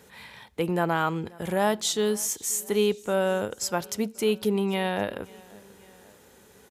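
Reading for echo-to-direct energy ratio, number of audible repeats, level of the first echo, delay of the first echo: -22.5 dB, 2, -24.0 dB, 535 ms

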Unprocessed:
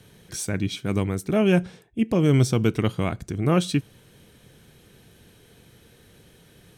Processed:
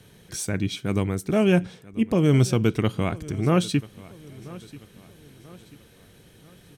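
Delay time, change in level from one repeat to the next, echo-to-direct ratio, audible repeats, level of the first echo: 987 ms, -7.0 dB, -19.0 dB, 3, -20.0 dB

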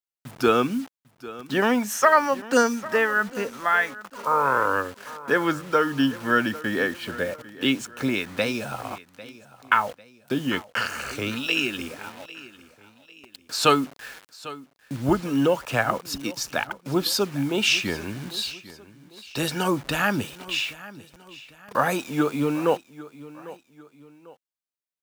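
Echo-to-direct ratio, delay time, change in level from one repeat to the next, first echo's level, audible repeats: -17.5 dB, 798 ms, -8.0 dB, -18.0 dB, 2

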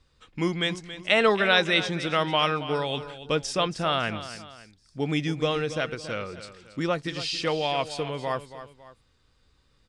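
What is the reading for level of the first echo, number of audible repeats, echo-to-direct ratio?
-13.0 dB, 2, -12.5 dB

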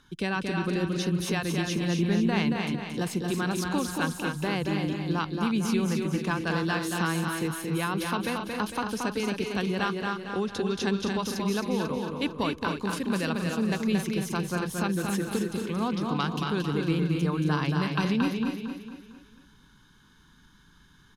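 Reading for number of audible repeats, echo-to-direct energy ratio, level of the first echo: 10, -1.5 dB, -4.5 dB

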